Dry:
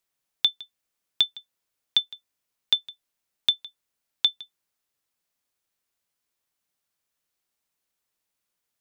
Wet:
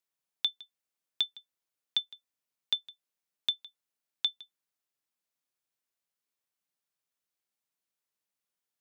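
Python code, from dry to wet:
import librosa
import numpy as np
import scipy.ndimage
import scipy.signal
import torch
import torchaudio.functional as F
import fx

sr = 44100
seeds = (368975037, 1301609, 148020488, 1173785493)

y = scipy.signal.sosfilt(scipy.signal.butter(2, 99.0, 'highpass', fs=sr, output='sos'), x)
y = y * librosa.db_to_amplitude(-8.0)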